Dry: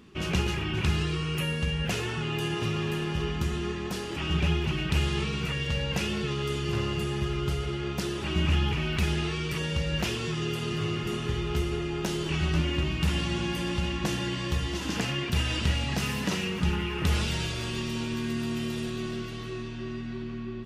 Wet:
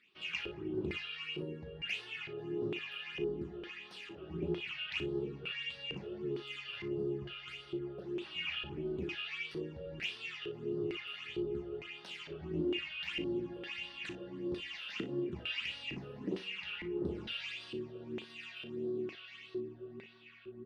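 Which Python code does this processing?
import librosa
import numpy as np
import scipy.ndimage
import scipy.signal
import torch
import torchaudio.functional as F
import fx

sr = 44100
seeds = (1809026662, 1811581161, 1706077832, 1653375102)

y = fx.phaser_stages(x, sr, stages=8, low_hz=260.0, high_hz=2400.0, hz=1.6, feedback_pct=25)
y = fx.filter_lfo_bandpass(y, sr, shape='square', hz=1.1, low_hz=360.0, high_hz=2400.0, q=3.5)
y = fx.room_early_taps(y, sr, ms=(36, 59), db=(-10.0, -14.5))
y = y * librosa.db_to_amplitude(1.5)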